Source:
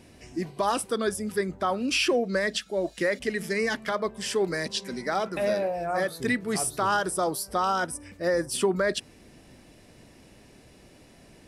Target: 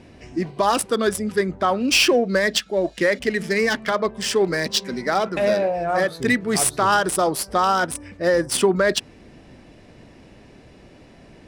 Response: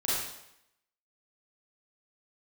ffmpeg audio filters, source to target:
-af "crystalizer=i=1.5:c=0,adynamicsmooth=sensitivity=3:basefreq=3100,volume=6.5dB"

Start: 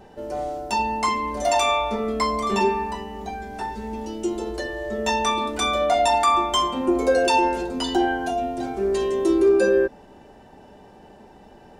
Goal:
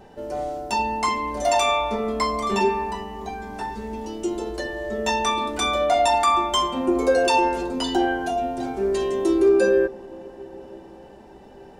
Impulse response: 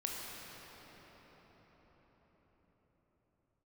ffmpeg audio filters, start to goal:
-filter_complex "[0:a]asplit=2[link_01][link_02];[1:a]atrim=start_sample=2205,lowpass=1200,adelay=7[link_03];[link_02][link_03]afir=irnorm=-1:irlink=0,volume=-18dB[link_04];[link_01][link_04]amix=inputs=2:normalize=0"

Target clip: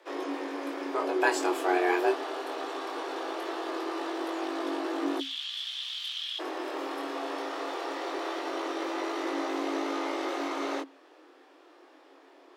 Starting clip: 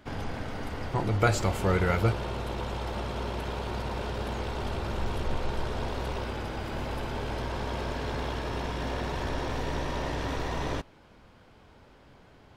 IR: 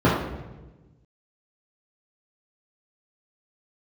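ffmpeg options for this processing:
-filter_complex "[0:a]flanger=delay=19.5:depth=5:speed=0.21,asplit=3[link_01][link_02][link_03];[link_01]afade=type=out:start_time=5.19:duration=0.02[link_04];[link_02]highpass=frequency=3000:width_type=q:width=8.6,afade=type=in:start_time=5.19:duration=0.02,afade=type=out:start_time=6.38:duration=0.02[link_05];[link_03]afade=type=in:start_time=6.38:duration=0.02[link_06];[link_04][link_05][link_06]amix=inputs=3:normalize=0,afreqshift=270,volume=2dB"

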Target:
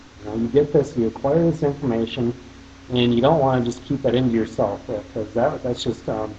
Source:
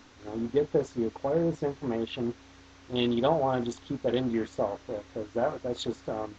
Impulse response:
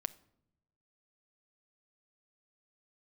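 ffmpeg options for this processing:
-filter_complex "[0:a]asplit=2[link_01][link_02];[1:a]atrim=start_sample=2205,asetrate=40131,aresample=44100,lowshelf=frequency=170:gain=9[link_03];[link_02][link_03]afir=irnorm=-1:irlink=0,volume=7dB[link_04];[link_01][link_04]amix=inputs=2:normalize=0,volume=-2dB"

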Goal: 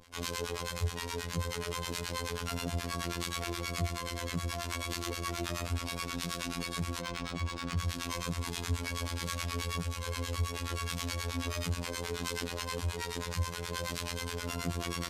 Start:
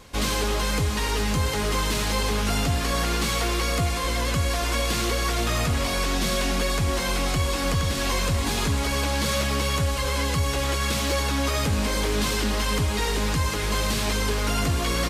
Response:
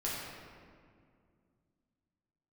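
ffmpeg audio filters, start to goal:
-filter_complex "[0:a]acrossover=split=810[link_01][link_02];[link_01]aeval=exprs='val(0)*(1-1/2+1/2*cos(2*PI*9.4*n/s))':channel_layout=same[link_03];[link_02]aeval=exprs='val(0)*(1-1/2-1/2*cos(2*PI*9.4*n/s))':channel_layout=same[link_04];[link_03][link_04]amix=inputs=2:normalize=0,asplit=3[link_05][link_06][link_07];[link_05]afade=type=out:start_time=7:duration=0.02[link_08];[link_06]adynamicsmooth=sensitivity=5:basefreq=4200,afade=type=in:start_time=7:duration=0.02,afade=type=out:start_time=7.77:duration=0.02[link_09];[link_07]afade=type=in:start_time=7.77:duration=0.02[link_10];[link_08][link_09][link_10]amix=inputs=3:normalize=0,afftfilt=real='hypot(re,im)*cos(PI*b)':imag='0':win_size=2048:overlap=0.75,volume=-3.5dB"

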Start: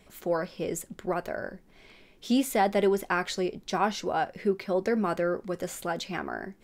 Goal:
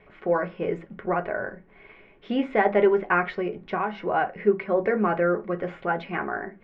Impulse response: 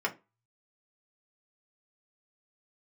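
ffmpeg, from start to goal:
-filter_complex "[0:a]lowpass=frequency=2500:width=0.5412,lowpass=frequency=2500:width=1.3066,asplit=2[link_01][link_02];[1:a]atrim=start_sample=2205,highshelf=frequency=5400:gain=8.5[link_03];[link_02][link_03]afir=irnorm=-1:irlink=0,volume=-7dB[link_04];[link_01][link_04]amix=inputs=2:normalize=0,asettb=1/sr,asplit=3[link_05][link_06][link_07];[link_05]atrim=end=3.344[link_08];[link_06]atrim=start=3.34:end=4.08,asetpts=PTS-STARTPTS,afade=type=in:duration=0.004:curve=qsin,afade=type=out:start_time=0.736:duration=0.004:curve=qsin,acompressor=threshold=-23dB:ratio=6[link_09];[link_07]atrim=start=4.076[link_10];[link_08][link_09]acrossfade=duration=0.004:curve1=hsin:curve2=qsin[link_11];[link_11][link_10]acrossfade=duration=0.004:curve1=qsin:curve2=hsin"

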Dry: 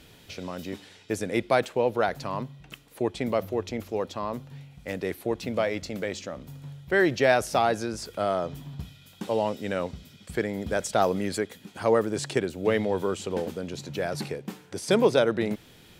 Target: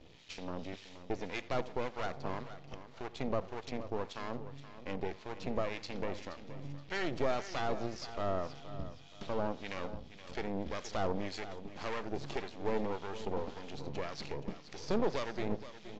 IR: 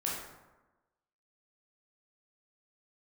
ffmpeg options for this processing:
-filter_complex "[0:a]lowpass=frequency=5500:width=0.5412,lowpass=frequency=5500:width=1.3066,equalizer=frequency=1500:width_type=o:width=0.22:gain=-11.5,bandreject=frequency=50:width_type=h:width=6,bandreject=frequency=100:width_type=h:width=6,bandreject=frequency=150:width_type=h:width=6,asplit=2[link_01][link_02];[link_02]acompressor=threshold=-32dB:ratio=6,volume=3dB[link_03];[link_01][link_03]amix=inputs=2:normalize=0,asoftclip=type=hard:threshold=-14.5dB,asplit=2[link_04][link_05];[link_05]adelay=84,lowpass=frequency=4200:poles=1,volume=-17dB,asplit=2[link_06][link_07];[link_07]adelay=84,lowpass=frequency=4200:poles=1,volume=0.39,asplit=2[link_08][link_09];[link_09]adelay=84,lowpass=frequency=4200:poles=1,volume=0.39[link_10];[link_06][link_08][link_10]amix=inputs=3:normalize=0[link_11];[link_04][link_11]amix=inputs=2:normalize=0,aeval=exprs='max(val(0),0)':channel_layout=same,acrossover=split=1200[link_12][link_13];[link_12]aeval=exprs='val(0)*(1-0.7/2+0.7/2*cos(2*PI*1.8*n/s))':channel_layout=same[link_14];[link_13]aeval=exprs='val(0)*(1-0.7/2-0.7/2*cos(2*PI*1.8*n/s))':channel_layout=same[link_15];[link_14][link_15]amix=inputs=2:normalize=0,aecho=1:1:473|946|1419:0.224|0.0761|0.0259,volume=-6dB" -ar 16000 -c:a aac -b:a 48k

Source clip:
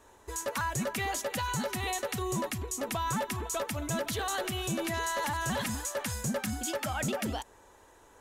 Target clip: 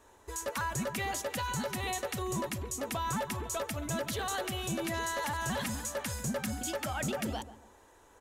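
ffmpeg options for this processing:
ffmpeg -i in.wav -filter_complex "[0:a]asplit=2[link_01][link_02];[link_02]adelay=139,lowpass=frequency=980:poles=1,volume=-12.5dB,asplit=2[link_03][link_04];[link_04]adelay=139,lowpass=frequency=980:poles=1,volume=0.36,asplit=2[link_05][link_06];[link_06]adelay=139,lowpass=frequency=980:poles=1,volume=0.36,asplit=2[link_07][link_08];[link_08]adelay=139,lowpass=frequency=980:poles=1,volume=0.36[link_09];[link_01][link_03][link_05][link_07][link_09]amix=inputs=5:normalize=0,volume=-2dB" out.wav

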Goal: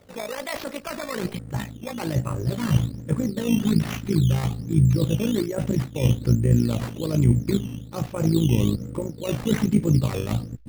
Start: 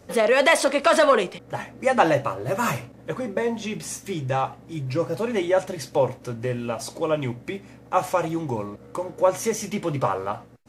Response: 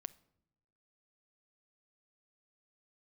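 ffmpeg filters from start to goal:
-af "areverse,acompressor=threshold=-29dB:ratio=6,areverse,asubboost=boost=11.5:cutoff=230,acrusher=samples=10:mix=1:aa=0.000001:lfo=1:lforange=10:lforate=1.2,tremolo=f=55:d=0.71,volume=3.5dB"

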